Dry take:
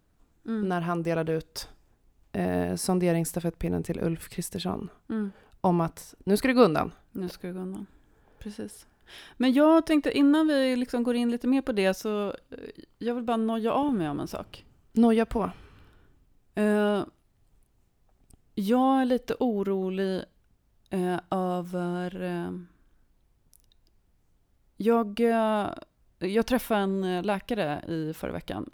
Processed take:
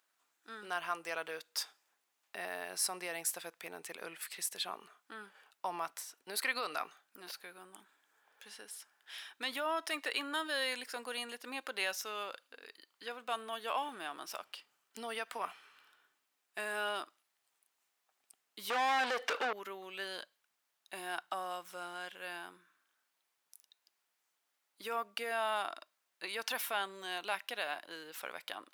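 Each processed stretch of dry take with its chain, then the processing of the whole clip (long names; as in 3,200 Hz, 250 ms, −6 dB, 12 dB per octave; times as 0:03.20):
0:18.70–0:19.53: high-shelf EQ 10,000 Hz −6 dB + mid-hump overdrive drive 31 dB, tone 1,200 Hz, clips at −12 dBFS
whole clip: brickwall limiter −16 dBFS; high-pass filter 1,200 Hz 12 dB per octave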